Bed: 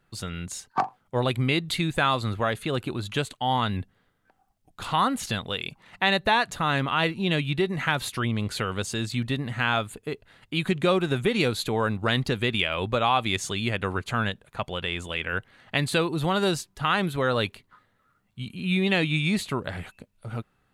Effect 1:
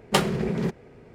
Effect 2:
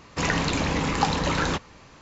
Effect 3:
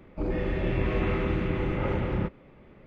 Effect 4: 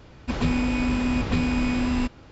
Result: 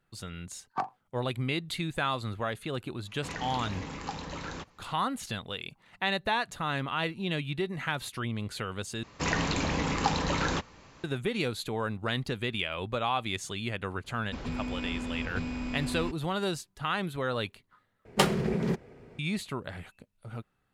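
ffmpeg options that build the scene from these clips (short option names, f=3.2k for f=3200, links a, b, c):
-filter_complex "[2:a]asplit=2[a][b];[0:a]volume=-7dB[c];[4:a]asoftclip=type=tanh:threshold=-15dB[d];[c]asplit=3[e][f][g];[e]atrim=end=9.034[h];[b]atrim=end=2.01,asetpts=PTS-STARTPTS,volume=-4.5dB[i];[f]atrim=start=11.036:end=18.054[j];[1:a]atrim=end=1.14,asetpts=PTS-STARTPTS,volume=-2.5dB[k];[g]atrim=start=19.186[l];[a]atrim=end=2.01,asetpts=PTS-STARTPTS,volume=-14.5dB,afade=t=in:d=0.004:c=hsin,afade=t=out:st=2.006:d=0.004:c=hsin,adelay=3060[m];[d]atrim=end=2.31,asetpts=PTS-STARTPTS,volume=-10.5dB,afade=t=in:d=0.004:c=hsin,afade=t=out:st=2.306:d=0.004:c=hsin,adelay=14040[n];[h][i]acrossfade=d=0.004:c1=hsin:c2=hsin[o];[o][j]acrossfade=d=0.004:c1=hsin:c2=hsin[p];[p][k]acrossfade=d=0.004:c1=hsin:c2=hsin[q];[q][l]acrossfade=d=0.004:c1=hsin:c2=hsin[r];[r][m][n]amix=inputs=3:normalize=0"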